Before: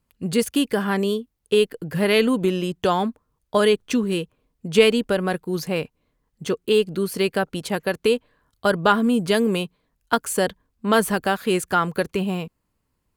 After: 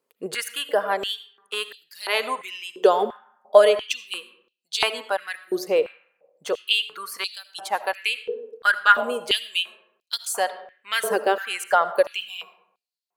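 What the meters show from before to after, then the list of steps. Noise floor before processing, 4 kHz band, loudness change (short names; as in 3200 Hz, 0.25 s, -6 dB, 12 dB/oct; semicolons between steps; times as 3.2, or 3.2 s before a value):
-74 dBFS, +2.5 dB, -1.5 dB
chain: reverb removal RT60 1.7 s; digital reverb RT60 0.91 s, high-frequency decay 0.45×, pre-delay 35 ms, DRR 12.5 dB; stepped high-pass 2.9 Hz 440–4100 Hz; gain -2 dB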